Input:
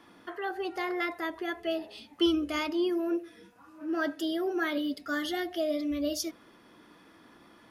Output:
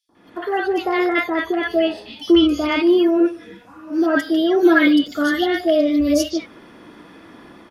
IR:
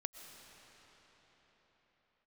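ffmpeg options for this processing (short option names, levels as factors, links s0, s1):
-filter_complex "[0:a]highshelf=f=7100:g=-10.5,acrossover=split=1200|4400[s0][s1][s2];[s0]adelay=90[s3];[s1]adelay=150[s4];[s3][s4][s2]amix=inputs=3:normalize=0,dynaudnorm=f=120:g=5:m=6.31,asettb=1/sr,asplit=3[s5][s6][s7];[s5]atrim=end=4.624[s8];[s6]atrim=start=4.62:end=5.08,asetpts=PTS-STARTPTS,afade=t=in:d=0.004:c=qsin,afade=t=out:st=0.456:d=0.004:c=qsin,aecho=1:1:6:0.99,atrim=end_sample=20286[s9];[s7]atrim=start=5.076[s10];[s8][s9]acrossfade=d=0.004:c1=hsin:c2=qsin[s11];[s11][s10]acrossfade=d=0.004:c1=qsin:c2=hsin,volume=0.841"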